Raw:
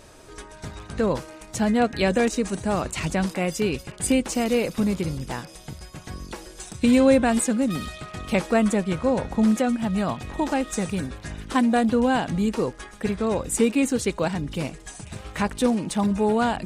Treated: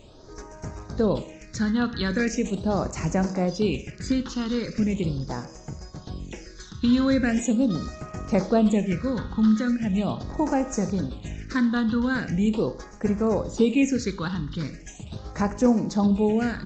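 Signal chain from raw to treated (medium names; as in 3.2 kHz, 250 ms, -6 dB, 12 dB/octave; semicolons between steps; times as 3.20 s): resampled via 16 kHz; Schroeder reverb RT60 0.6 s, combs from 29 ms, DRR 12 dB; phase shifter stages 6, 0.4 Hz, lowest notch 610–3500 Hz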